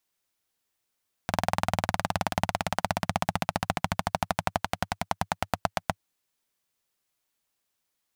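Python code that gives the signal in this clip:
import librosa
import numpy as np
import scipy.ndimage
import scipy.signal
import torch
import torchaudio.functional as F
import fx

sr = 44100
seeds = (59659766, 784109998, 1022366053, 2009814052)

y = fx.engine_single_rev(sr, seeds[0], length_s=4.72, rpm=2500, resonances_hz=(100.0, 170.0, 720.0), end_rpm=900)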